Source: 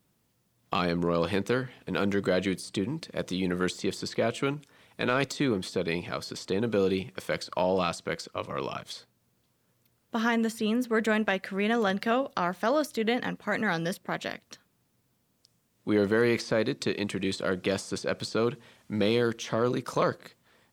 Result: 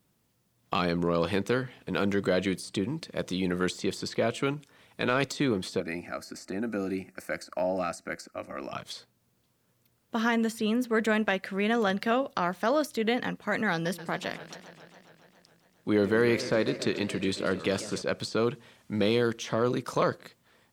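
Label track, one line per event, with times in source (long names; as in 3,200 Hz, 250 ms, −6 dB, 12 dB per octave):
5.800000	8.730000	phaser with its sweep stopped centre 670 Hz, stages 8
13.710000	18.020000	feedback echo with a swinging delay time 138 ms, feedback 76%, depth 200 cents, level −15 dB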